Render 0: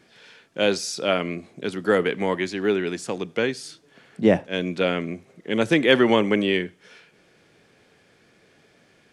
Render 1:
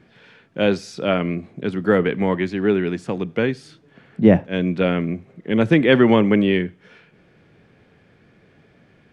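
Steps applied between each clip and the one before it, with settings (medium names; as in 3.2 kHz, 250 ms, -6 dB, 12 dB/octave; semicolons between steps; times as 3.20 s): tone controls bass +9 dB, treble -14 dB; trim +1.5 dB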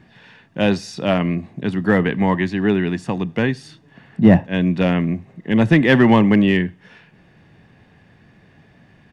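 comb 1.1 ms, depth 46%; in parallel at -6 dB: hard clipper -10.5 dBFS, distortion -15 dB; on the sum: trim -1 dB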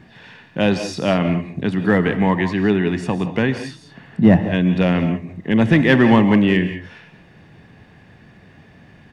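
in parallel at -0.5 dB: compression, threshold -25 dBFS, peak gain reduction 17 dB; on the sum: gated-style reverb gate 210 ms rising, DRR 9 dB; trim -2 dB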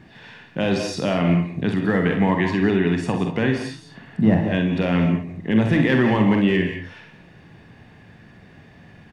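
peak limiter -9 dBFS, peak gain reduction 7.5 dB; on a send: early reflections 46 ms -7.5 dB, 64 ms -9.5 dB; on the sum: trim -1.5 dB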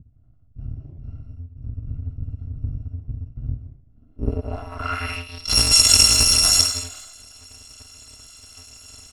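bit-reversed sample order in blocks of 256 samples; low-pass sweep 150 Hz -> 6.8 kHz, 3.83–5.64 s; trim +4.5 dB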